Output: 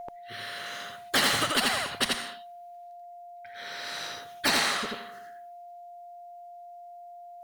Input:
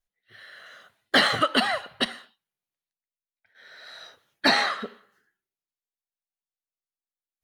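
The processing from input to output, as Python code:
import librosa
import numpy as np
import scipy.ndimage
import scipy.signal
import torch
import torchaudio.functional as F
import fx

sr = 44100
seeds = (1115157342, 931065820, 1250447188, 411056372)

y = x + 10.0 ** (-33.0 / 20.0) * np.sin(2.0 * np.pi * 700.0 * np.arange(len(x)) / sr)
y = fx.dynamic_eq(y, sr, hz=550.0, q=1.2, threshold_db=-39.0, ratio=4.0, max_db=-4)
y = y + 10.0 ** (-4.0 / 20.0) * np.pad(y, (int(85 * sr / 1000.0), 0))[:len(y)]
y = fx.spectral_comp(y, sr, ratio=2.0)
y = y * 10.0 ** (-4.5 / 20.0)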